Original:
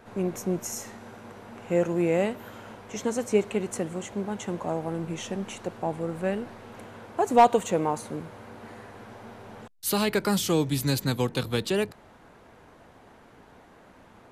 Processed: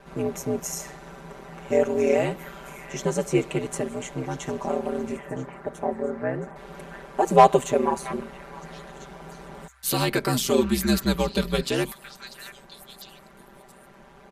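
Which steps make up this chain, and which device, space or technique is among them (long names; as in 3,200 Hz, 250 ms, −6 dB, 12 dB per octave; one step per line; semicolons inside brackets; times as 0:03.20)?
0:05.16–0:06.56: elliptic band-pass filter 120–1,900 Hz
echo through a band-pass that steps 673 ms, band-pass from 1,700 Hz, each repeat 1.4 octaves, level −8.5 dB
ring-modulated robot voice (ring modulation 65 Hz; comb filter 5.1 ms, depth 87%)
level +3 dB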